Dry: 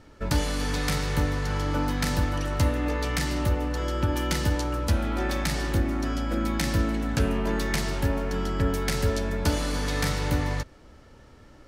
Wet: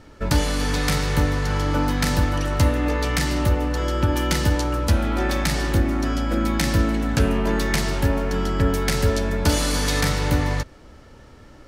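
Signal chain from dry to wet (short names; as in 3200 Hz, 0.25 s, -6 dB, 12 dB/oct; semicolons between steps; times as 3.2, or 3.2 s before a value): 9.49–10.01 high shelf 3900 Hz +8 dB; gain +5 dB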